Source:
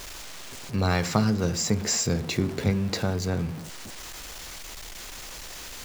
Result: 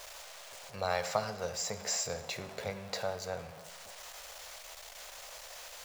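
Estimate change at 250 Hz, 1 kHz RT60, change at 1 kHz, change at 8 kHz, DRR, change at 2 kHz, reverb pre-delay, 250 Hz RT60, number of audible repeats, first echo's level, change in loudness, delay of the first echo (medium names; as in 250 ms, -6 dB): -22.0 dB, 1.2 s, -4.5 dB, -7.5 dB, 12.0 dB, -7.0 dB, 16 ms, 1.2 s, no echo, no echo, -11.0 dB, no echo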